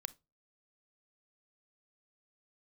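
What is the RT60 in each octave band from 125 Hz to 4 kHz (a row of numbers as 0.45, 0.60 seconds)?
0.40, 0.35, 0.30, 0.25, 0.20, 0.20 seconds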